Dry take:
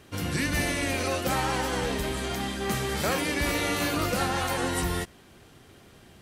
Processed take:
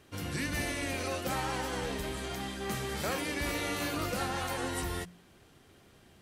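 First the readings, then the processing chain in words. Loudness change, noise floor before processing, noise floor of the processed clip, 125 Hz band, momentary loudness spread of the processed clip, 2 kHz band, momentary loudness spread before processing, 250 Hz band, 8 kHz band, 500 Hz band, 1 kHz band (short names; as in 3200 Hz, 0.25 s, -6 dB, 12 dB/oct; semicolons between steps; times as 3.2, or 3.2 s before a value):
-6.5 dB, -54 dBFS, -60 dBFS, -7.0 dB, 4 LU, -6.5 dB, 4 LU, -7.0 dB, -6.5 dB, -6.5 dB, -6.5 dB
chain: de-hum 58.69 Hz, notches 4; gain -6.5 dB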